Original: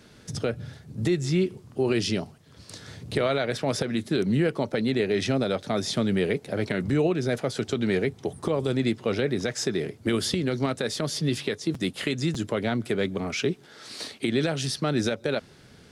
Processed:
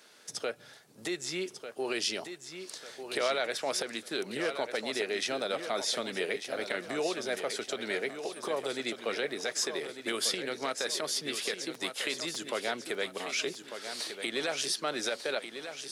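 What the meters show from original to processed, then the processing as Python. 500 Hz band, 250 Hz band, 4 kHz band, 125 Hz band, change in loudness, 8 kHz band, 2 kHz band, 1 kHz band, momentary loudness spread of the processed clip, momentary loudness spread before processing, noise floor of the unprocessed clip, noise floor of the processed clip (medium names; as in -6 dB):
-7.0 dB, -14.5 dB, -0.5 dB, -25.0 dB, -6.5 dB, +1.0 dB, -1.5 dB, -2.5 dB, 8 LU, 7 LU, -52 dBFS, -54 dBFS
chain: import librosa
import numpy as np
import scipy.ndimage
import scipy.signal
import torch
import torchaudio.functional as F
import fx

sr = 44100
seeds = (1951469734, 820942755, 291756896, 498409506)

y = scipy.signal.sosfilt(scipy.signal.butter(2, 560.0, 'highpass', fs=sr, output='sos'), x)
y = fx.high_shelf(y, sr, hz=7000.0, db=6.0)
y = fx.echo_feedback(y, sr, ms=1196, feedback_pct=41, wet_db=-9.0)
y = F.gain(torch.from_numpy(y), -2.5).numpy()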